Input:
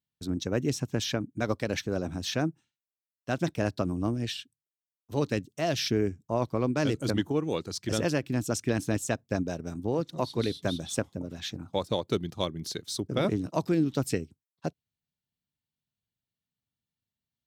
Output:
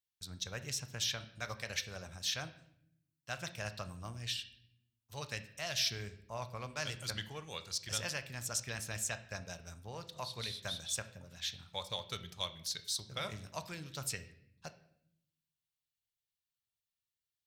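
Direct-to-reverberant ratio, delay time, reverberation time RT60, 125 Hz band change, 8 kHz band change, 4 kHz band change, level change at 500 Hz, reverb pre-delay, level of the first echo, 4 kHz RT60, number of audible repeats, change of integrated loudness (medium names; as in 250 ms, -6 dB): 9.0 dB, no echo, 0.70 s, -13.0 dB, -0.5 dB, -1.5 dB, -17.0 dB, 3 ms, no echo, 0.60 s, no echo, -9.0 dB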